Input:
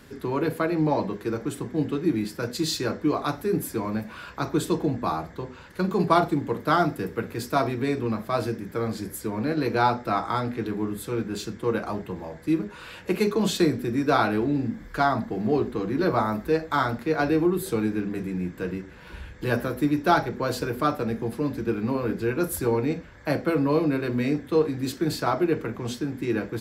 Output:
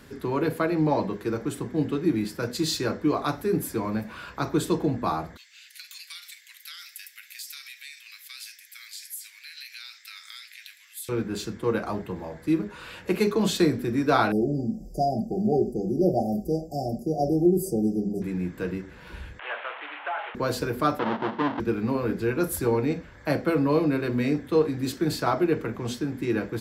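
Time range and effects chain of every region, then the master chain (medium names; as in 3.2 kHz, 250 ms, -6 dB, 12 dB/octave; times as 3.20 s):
5.37–11.09 s: steep high-pass 2 kHz + compression, threshold -42 dBFS + treble shelf 3.2 kHz +9.5 dB
14.32–18.22 s: brick-wall FIR band-stop 800–4600 Hz + comb 5.3 ms, depth 48%
19.39–20.35 s: one-bit delta coder 16 kbps, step -27.5 dBFS + high-pass 710 Hz 24 dB/octave + compression, threshold -26 dBFS
20.99–21.60 s: square wave that keeps the level + cabinet simulation 260–3000 Hz, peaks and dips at 460 Hz -4 dB, 930 Hz +6 dB, 2.4 kHz -9 dB
whole clip: none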